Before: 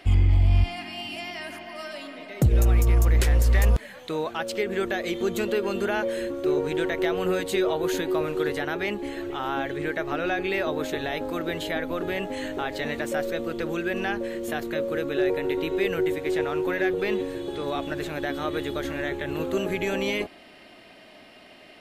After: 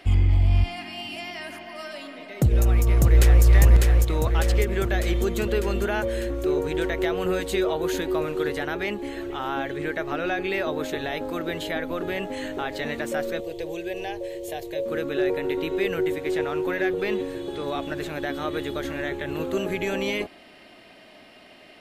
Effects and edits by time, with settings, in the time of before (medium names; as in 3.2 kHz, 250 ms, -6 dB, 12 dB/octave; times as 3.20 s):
2.30–3.44 s: echo throw 600 ms, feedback 65%, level -2.5 dB
13.40–14.86 s: static phaser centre 550 Hz, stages 4